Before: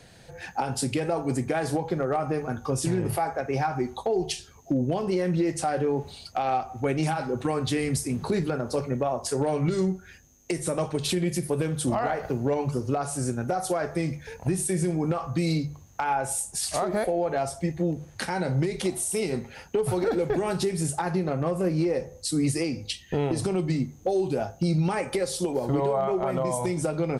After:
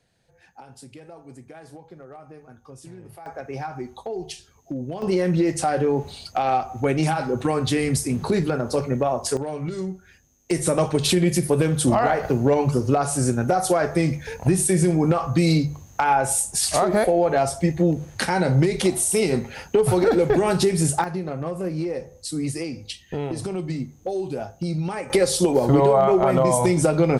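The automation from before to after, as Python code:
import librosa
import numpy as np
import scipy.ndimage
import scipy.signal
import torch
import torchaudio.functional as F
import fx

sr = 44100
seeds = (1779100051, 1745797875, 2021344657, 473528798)

y = fx.gain(x, sr, db=fx.steps((0.0, -16.5), (3.26, -5.0), (5.02, 4.5), (9.37, -4.0), (10.51, 7.0), (21.04, -2.0), (25.1, 8.5)))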